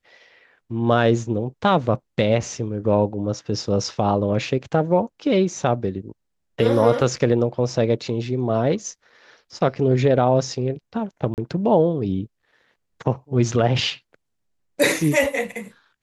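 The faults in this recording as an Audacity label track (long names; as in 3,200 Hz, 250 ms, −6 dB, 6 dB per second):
11.340000	11.380000	drop-out 38 ms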